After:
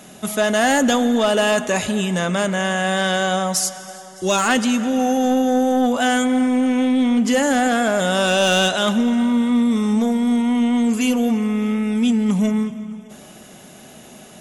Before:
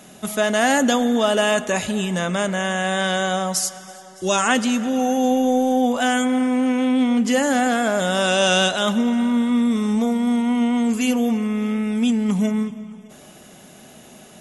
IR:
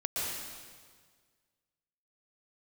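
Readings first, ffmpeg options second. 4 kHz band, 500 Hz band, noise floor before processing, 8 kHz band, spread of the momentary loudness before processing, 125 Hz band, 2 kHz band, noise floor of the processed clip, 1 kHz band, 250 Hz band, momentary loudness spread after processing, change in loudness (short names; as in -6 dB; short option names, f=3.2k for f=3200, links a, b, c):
+1.0 dB, +1.5 dB, -45 dBFS, +1.0 dB, 5 LU, n/a, +1.5 dB, -42 dBFS, +1.0 dB, +1.5 dB, 5 LU, +1.5 dB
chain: -filter_complex "[0:a]aeval=exprs='0.668*(cos(1*acos(clip(val(0)/0.668,-1,1)))-cos(1*PI/2))+0.0944*(cos(5*acos(clip(val(0)/0.668,-1,1)))-cos(5*PI/2))':c=same,asplit=2[a][b];[1:a]atrim=start_sample=2205,asetrate=33075,aresample=44100[c];[b][c]afir=irnorm=-1:irlink=0,volume=-28dB[d];[a][d]amix=inputs=2:normalize=0,volume=-2.5dB"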